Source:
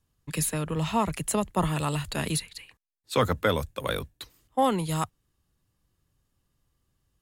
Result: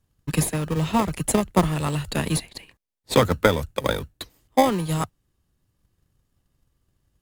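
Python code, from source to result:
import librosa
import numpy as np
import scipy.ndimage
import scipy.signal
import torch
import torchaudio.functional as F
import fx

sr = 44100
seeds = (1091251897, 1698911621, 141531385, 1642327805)

p1 = fx.transient(x, sr, attack_db=7, sustain_db=0)
p2 = fx.sample_hold(p1, sr, seeds[0], rate_hz=1400.0, jitter_pct=0)
y = p1 + F.gain(torch.from_numpy(p2), -6.0).numpy()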